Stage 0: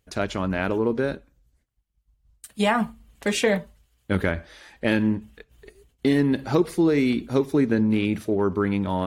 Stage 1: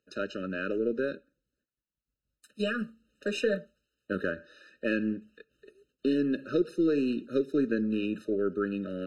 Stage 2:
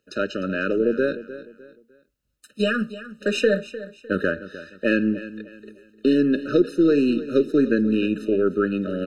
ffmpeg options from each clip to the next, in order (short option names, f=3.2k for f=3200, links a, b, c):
-filter_complex "[0:a]acrossover=split=190 6200:gain=0.0794 1 0.178[a][b][c];[a][b][c]amix=inputs=3:normalize=0,aeval=exprs='0.422*(cos(1*acos(clip(val(0)/0.422,-1,1)))-cos(1*PI/2))+0.00596*(cos(6*acos(clip(val(0)/0.422,-1,1)))-cos(6*PI/2))':c=same,afftfilt=real='re*eq(mod(floor(b*sr/1024/610),2),0)':imag='im*eq(mod(floor(b*sr/1024/610),2),0)':win_size=1024:overlap=0.75,volume=-5dB"
-af "aecho=1:1:303|606|909:0.178|0.0587|0.0194,volume=8.5dB"